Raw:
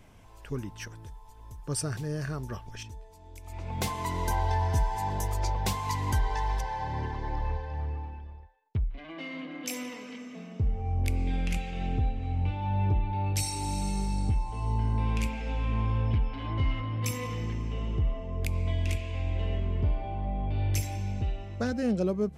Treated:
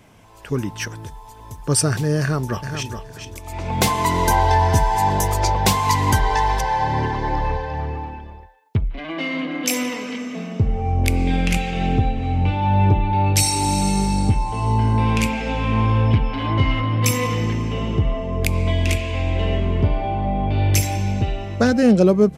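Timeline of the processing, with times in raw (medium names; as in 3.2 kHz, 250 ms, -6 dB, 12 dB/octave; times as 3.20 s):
2.20–2.92 s: echo throw 420 ms, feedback 15%, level -8 dB
whole clip: level rider gain up to 7 dB; high-pass 40 Hz; peaking EQ 63 Hz -13 dB 0.71 oct; trim +7 dB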